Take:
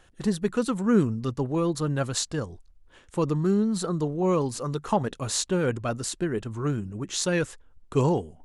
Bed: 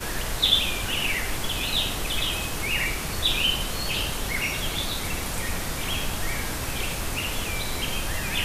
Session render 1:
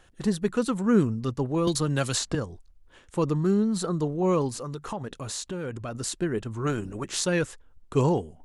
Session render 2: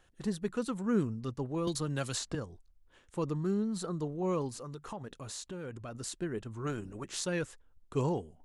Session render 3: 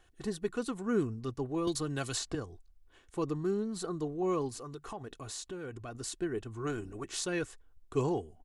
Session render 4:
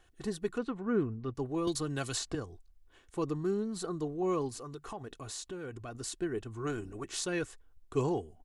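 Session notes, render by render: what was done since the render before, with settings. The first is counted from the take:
1.67–2.35 s: three bands compressed up and down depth 100%; 4.49–5.95 s: compression 3:1, threshold -32 dBFS; 6.66–7.19 s: spectral peaks clipped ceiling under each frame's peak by 14 dB
trim -8.5 dB
comb 2.7 ms, depth 44%
0.58–1.35 s: low-pass 2.5 kHz

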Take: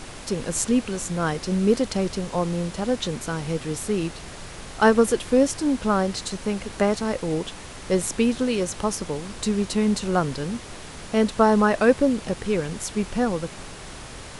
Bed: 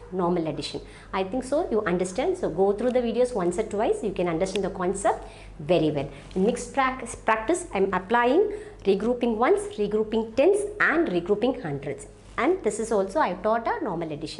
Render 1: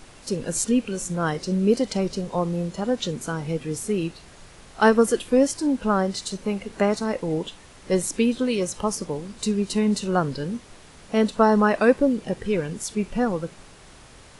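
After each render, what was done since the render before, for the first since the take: noise print and reduce 9 dB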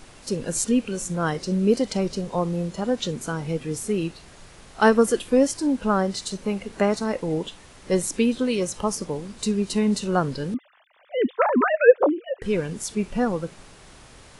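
10.54–12.42 s: formants replaced by sine waves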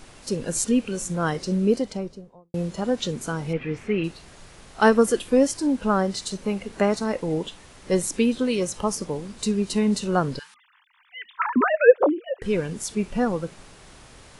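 1.48–2.54 s: studio fade out; 3.53–4.04 s: resonant low-pass 2.3 kHz, resonance Q 3; 10.39–11.56 s: elliptic high-pass 930 Hz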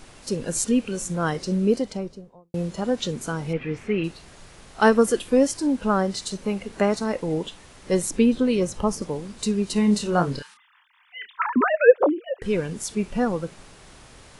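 8.10–9.02 s: tilt EQ -1.5 dB/octave; 9.73–11.27 s: doubling 29 ms -6 dB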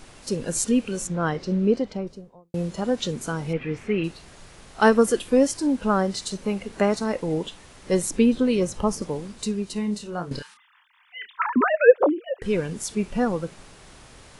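1.07–2.07 s: Bessel low-pass 3.4 kHz; 9.24–10.31 s: fade out quadratic, to -10 dB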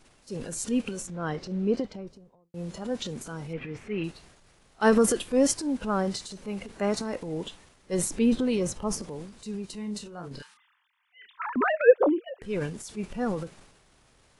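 transient shaper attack -4 dB, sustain +8 dB; upward expansion 1.5:1, over -39 dBFS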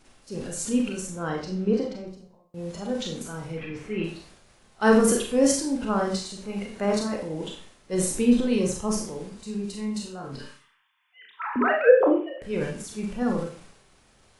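Schroeder reverb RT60 0.4 s, combs from 29 ms, DRR 1 dB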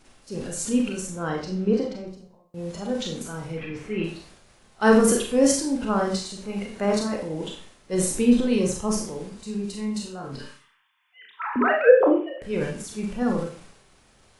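trim +1.5 dB

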